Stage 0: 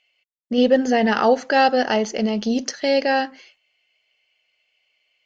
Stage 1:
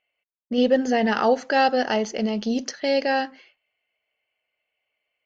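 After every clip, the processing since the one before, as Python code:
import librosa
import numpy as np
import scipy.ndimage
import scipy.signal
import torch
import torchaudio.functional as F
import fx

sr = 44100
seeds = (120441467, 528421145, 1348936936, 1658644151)

y = fx.env_lowpass(x, sr, base_hz=1600.0, full_db=-16.5)
y = y * 10.0 ** (-3.0 / 20.0)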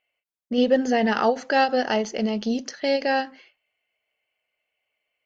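y = fx.end_taper(x, sr, db_per_s=240.0)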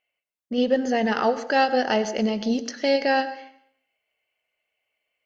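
y = fx.rider(x, sr, range_db=10, speed_s=2.0)
y = fx.rev_plate(y, sr, seeds[0], rt60_s=0.66, hf_ratio=0.75, predelay_ms=85, drr_db=13.5)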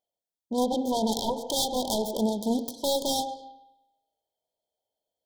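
y = fx.self_delay(x, sr, depth_ms=0.74)
y = fx.brickwall_bandstop(y, sr, low_hz=1000.0, high_hz=3100.0)
y = fx.rev_spring(y, sr, rt60_s=1.0, pass_ms=(36,), chirp_ms=50, drr_db=14.5)
y = y * 10.0 ** (-2.0 / 20.0)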